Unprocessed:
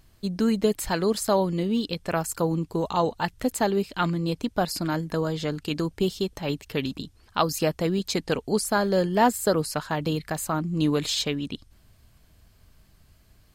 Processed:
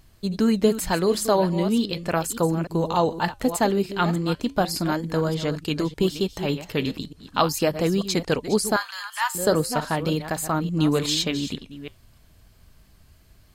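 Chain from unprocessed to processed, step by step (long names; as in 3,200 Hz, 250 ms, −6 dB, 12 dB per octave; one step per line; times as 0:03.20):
delay that plays each chunk backwards 297 ms, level −11.5 dB
0:08.76–0:09.35: Butterworth high-pass 1,000 Hz 48 dB per octave
flanger 0.37 Hz, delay 0.9 ms, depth 6.9 ms, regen −85%
level +7 dB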